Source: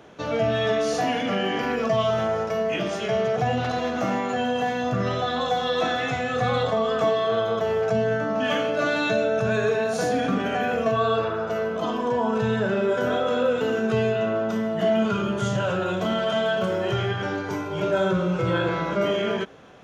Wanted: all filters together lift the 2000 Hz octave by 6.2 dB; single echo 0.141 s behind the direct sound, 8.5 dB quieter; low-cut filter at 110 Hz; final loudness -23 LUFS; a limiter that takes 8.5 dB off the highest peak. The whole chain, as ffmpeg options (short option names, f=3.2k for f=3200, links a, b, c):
-af "highpass=110,equalizer=f=2k:t=o:g=8.5,alimiter=limit=-18.5dB:level=0:latency=1,aecho=1:1:141:0.376,volume=3dB"